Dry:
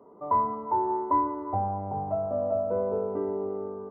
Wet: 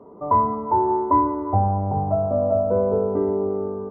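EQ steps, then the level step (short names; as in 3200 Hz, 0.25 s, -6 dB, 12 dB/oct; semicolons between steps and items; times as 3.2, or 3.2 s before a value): LPF 1700 Hz 6 dB/oct; low shelf 160 Hz +9 dB; +7.0 dB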